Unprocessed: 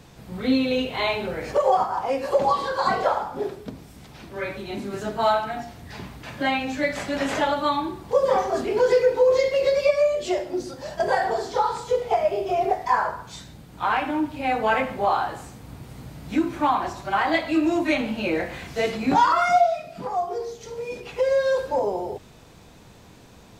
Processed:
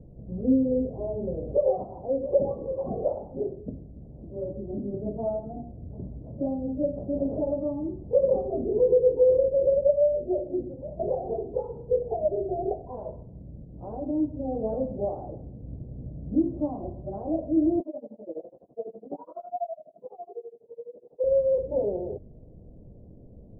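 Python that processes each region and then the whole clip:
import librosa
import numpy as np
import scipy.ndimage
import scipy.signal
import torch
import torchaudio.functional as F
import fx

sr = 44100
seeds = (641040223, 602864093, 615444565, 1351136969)

y = fx.chain(x, sr, fx.highpass(hz=520.0, slope=12),
    fx.tremolo(hz=12.0, depth=0.97), at=(17.8, 21.24))
y = scipy.signal.sosfilt(scipy.signal.ellip(4, 1.0, 70, 600.0, 'lowpass', fs=sr, output='sos'), y)
y = fx.low_shelf(y, sr, hz=78.0, db=11.5)
y = F.gain(torch.from_numpy(y), -1.5).numpy()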